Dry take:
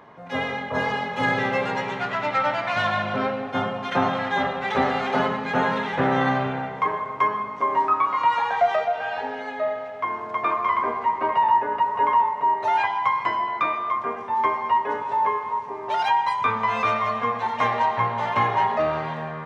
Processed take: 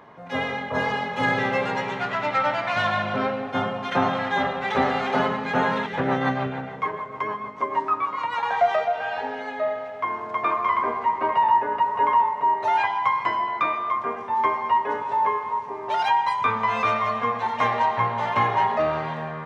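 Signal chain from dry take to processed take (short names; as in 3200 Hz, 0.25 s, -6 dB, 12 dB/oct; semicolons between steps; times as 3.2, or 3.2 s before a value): 5.86–8.43 rotary speaker horn 6.7 Hz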